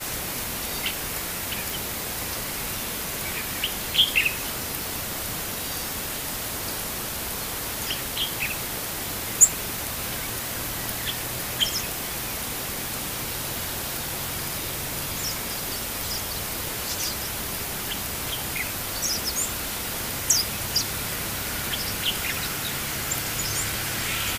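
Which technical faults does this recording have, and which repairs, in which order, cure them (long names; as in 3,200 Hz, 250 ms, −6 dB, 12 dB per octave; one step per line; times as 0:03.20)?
0:01.70: click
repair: click removal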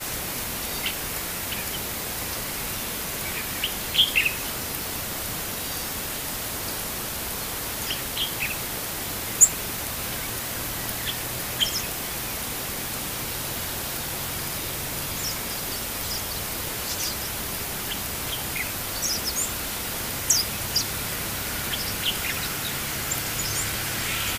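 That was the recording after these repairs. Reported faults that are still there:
none of them is left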